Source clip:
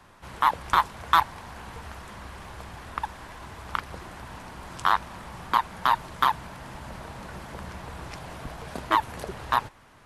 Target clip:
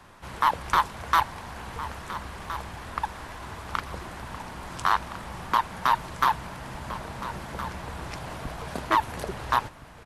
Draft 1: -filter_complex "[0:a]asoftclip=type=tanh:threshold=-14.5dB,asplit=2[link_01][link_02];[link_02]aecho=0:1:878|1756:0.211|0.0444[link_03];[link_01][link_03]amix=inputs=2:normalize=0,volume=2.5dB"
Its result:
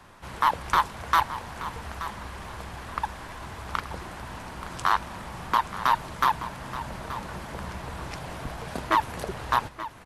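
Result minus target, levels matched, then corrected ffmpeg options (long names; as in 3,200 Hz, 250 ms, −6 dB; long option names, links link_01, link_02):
echo 489 ms early
-filter_complex "[0:a]asoftclip=type=tanh:threshold=-14.5dB,asplit=2[link_01][link_02];[link_02]aecho=0:1:1367|2734:0.211|0.0444[link_03];[link_01][link_03]amix=inputs=2:normalize=0,volume=2.5dB"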